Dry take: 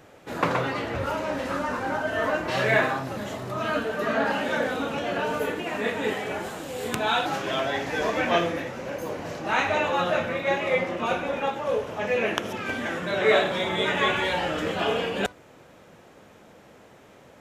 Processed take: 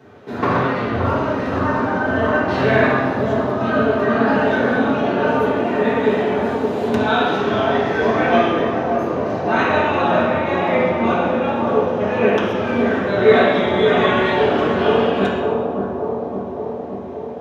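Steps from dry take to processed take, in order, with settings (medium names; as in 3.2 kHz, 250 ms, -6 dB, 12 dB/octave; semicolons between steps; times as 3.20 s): bucket-brigade echo 571 ms, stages 4096, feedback 70%, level -5 dB; reverberation RT60 1.1 s, pre-delay 3 ms, DRR -7 dB; trim -10 dB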